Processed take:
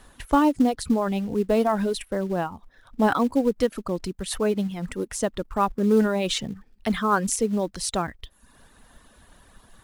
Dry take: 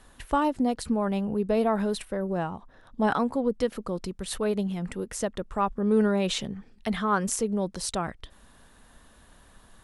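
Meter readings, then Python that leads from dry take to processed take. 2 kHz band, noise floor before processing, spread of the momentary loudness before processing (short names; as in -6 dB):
+3.5 dB, -56 dBFS, 9 LU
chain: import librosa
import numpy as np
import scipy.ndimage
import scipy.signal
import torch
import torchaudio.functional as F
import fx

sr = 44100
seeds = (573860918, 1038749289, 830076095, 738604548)

p1 = fx.dereverb_blind(x, sr, rt60_s=0.72)
p2 = fx.dynamic_eq(p1, sr, hz=290.0, q=4.3, threshold_db=-43.0, ratio=4.0, max_db=6)
p3 = fx.quant_float(p2, sr, bits=2)
y = p2 + (p3 * librosa.db_to_amplitude(-5.5))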